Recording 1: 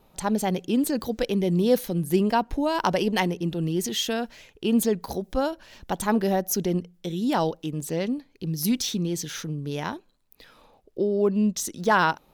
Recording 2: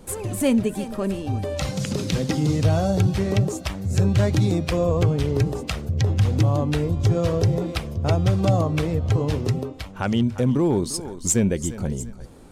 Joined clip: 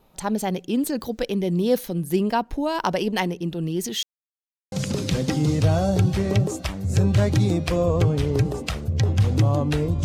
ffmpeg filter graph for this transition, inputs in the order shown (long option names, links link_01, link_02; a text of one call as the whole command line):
ffmpeg -i cue0.wav -i cue1.wav -filter_complex "[0:a]apad=whole_dur=10.04,atrim=end=10.04,asplit=2[link_01][link_02];[link_01]atrim=end=4.03,asetpts=PTS-STARTPTS,afade=type=out:start_time=4.026:duration=0.004:curve=hsin[link_03];[link_02]atrim=start=4.03:end=4.72,asetpts=PTS-STARTPTS,volume=0[link_04];[1:a]atrim=start=1.73:end=7.05,asetpts=PTS-STARTPTS,afade=type=in:duration=0.004:curve=hsin[link_05];[link_03][link_04][link_05]concat=n=3:v=0:a=1" out.wav